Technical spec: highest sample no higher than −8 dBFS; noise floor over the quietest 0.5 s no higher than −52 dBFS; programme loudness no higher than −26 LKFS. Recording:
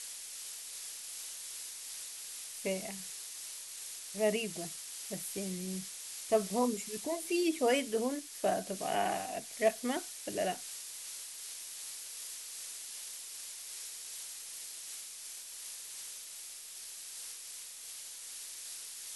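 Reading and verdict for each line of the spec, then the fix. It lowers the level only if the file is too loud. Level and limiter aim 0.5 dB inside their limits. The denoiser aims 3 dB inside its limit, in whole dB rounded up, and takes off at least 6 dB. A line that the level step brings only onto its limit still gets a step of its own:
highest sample −14.5 dBFS: in spec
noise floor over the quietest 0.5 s −47 dBFS: out of spec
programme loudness −37.5 LKFS: in spec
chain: broadband denoise 8 dB, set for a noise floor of −47 dBFS

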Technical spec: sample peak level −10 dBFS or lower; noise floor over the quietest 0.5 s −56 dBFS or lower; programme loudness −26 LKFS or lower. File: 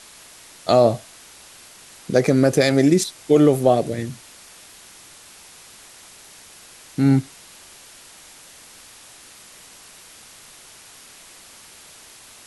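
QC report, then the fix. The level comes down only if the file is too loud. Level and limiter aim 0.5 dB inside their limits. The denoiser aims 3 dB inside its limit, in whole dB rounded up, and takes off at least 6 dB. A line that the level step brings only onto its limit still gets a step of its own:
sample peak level −4.5 dBFS: out of spec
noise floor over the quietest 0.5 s −45 dBFS: out of spec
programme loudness −18.5 LKFS: out of spec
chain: broadband denoise 6 dB, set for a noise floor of −45 dBFS
level −8 dB

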